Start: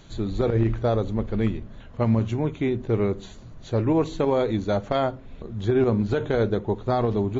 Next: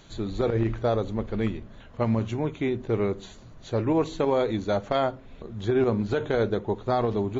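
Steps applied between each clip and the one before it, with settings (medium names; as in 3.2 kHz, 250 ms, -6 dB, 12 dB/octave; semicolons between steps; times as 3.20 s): bass shelf 270 Hz -5.5 dB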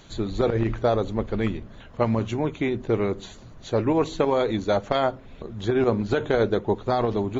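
harmonic-percussive split percussive +5 dB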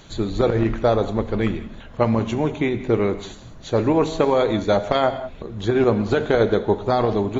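gated-style reverb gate 220 ms flat, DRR 10.5 dB; trim +3.5 dB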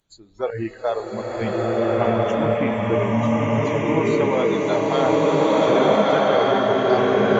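echo with a slow build-up 95 ms, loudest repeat 8, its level -14 dB; spectral noise reduction 25 dB; swelling reverb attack 1500 ms, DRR -7.5 dB; trim -4 dB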